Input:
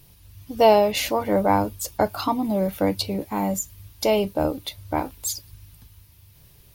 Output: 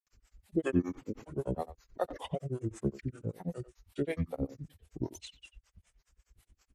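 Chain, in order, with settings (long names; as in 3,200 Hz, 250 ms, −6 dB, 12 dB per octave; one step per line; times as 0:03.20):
high-shelf EQ 3,200 Hz −2.5 dB
granular cloud, grains 9.6 per second, spray 100 ms, pitch spread up and down by 7 semitones
pitch shifter −8.5 semitones
two-band tremolo in antiphase 5.2 Hz, depth 100%, crossover 460 Hz
far-end echo of a speakerphone 90 ms, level −14 dB
level −5 dB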